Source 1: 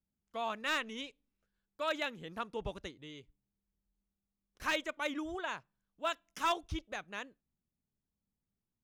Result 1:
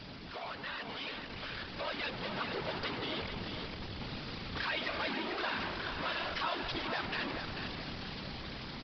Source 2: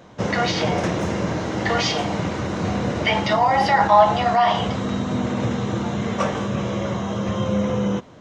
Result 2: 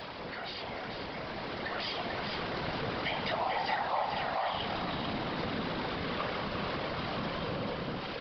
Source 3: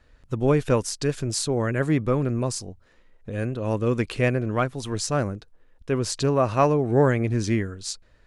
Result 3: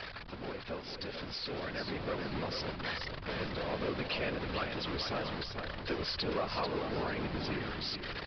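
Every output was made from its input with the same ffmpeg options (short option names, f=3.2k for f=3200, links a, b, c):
-af "aeval=exprs='val(0)+0.5*0.119*sgn(val(0))':c=same,lowshelf=f=410:g=-11,aresample=11025,aresample=44100,acompressor=threshold=-27dB:ratio=2.5,afftfilt=real='hypot(re,im)*cos(2*PI*random(0))':imag='hypot(re,im)*sin(2*PI*random(1))':win_size=512:overlap=0.75,aecho=1:1:441|882|1323:0.447|0.125|0.035,dynaudnorm=f=280:g=13:m=6dB,volume=-7.5dB"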